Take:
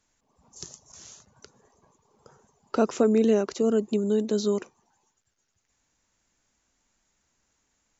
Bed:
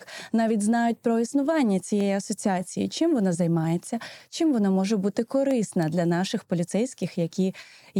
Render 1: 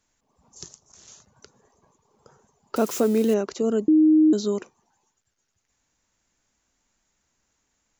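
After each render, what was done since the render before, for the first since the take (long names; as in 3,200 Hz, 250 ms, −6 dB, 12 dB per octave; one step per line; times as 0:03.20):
0:00.68–0:01.08: amplitude modulation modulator 280 Hz, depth 85%
0:02.76–0:03.34: spike at every zero crossing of −26.5 dBFS
0:03.88–0:04.33: beep over 311 Hz −12.5 dBFS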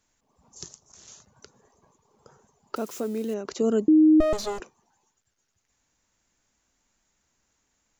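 0:02.75–0:03.45: clip gain −9 dB
0:04.20–0:04.60: lower of the sound and its delayed copy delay 1.7 ms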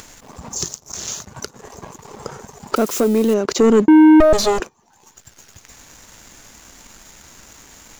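in parallel at +1.5 dB: upward compression, threshold −27 dBFS
on the sum: leveller curve on the samples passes 2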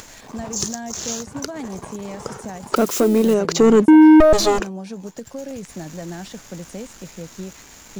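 mix in bed −9 dB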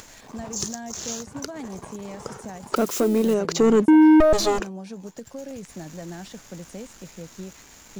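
level −4.5 dB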